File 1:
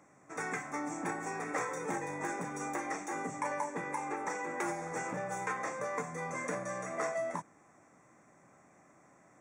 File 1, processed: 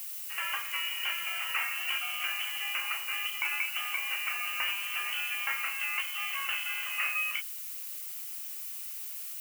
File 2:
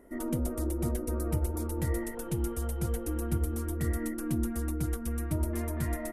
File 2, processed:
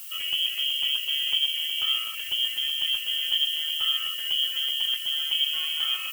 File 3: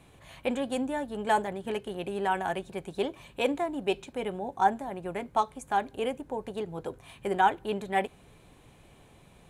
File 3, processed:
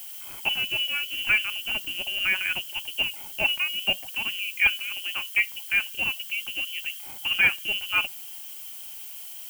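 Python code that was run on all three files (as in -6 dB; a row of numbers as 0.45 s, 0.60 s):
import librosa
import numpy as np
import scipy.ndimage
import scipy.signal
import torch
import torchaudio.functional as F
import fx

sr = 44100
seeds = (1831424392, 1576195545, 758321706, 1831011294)

y = np.minimum(x, 2.0 * 10.0 ** (-16.0 / 20.0) - x)
y = fx.freq_invert(y, sr, carrier_hz=3200)
y = fx.dmg_noise_colour(y, sr, seeds[0], colour='violet', level_db=-43.0)
y = F.gain(torch.from_numpy(y), 3.0).numpy()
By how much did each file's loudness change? +6.0 LU, +9.0 LU, +6.0 LU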